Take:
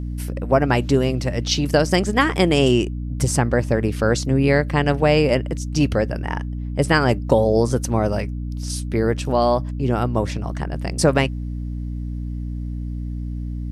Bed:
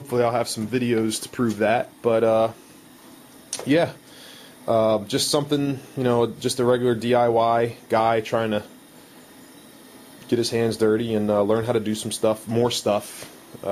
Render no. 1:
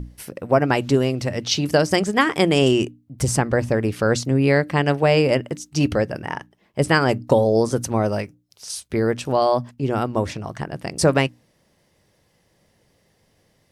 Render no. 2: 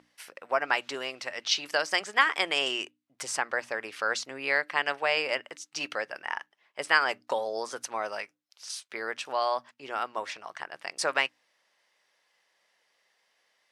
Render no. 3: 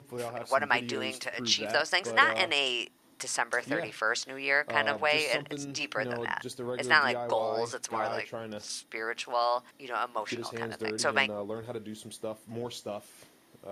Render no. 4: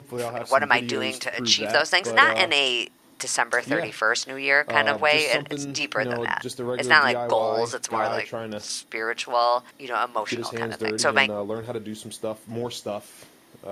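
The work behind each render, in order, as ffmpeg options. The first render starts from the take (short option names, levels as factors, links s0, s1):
-af "bandreject=f=60:t=h:w=6,bandreject=f=120:t=h:w=6,bandreject=f=180:t=h:w=6,bandreject=f=240:t=h:w=6,bandreject=f=300:t=h:w=6"
-af "highpass=1200,aemphasis=mode=reproduction:type=50fm"
-filter_complex "[1:a]volume=0.15[s0];[0:a][s0]amix=inputs=2:normalize=0"
-af "volume=2.24,alimiter=limit=0.891:level=0:latency=1"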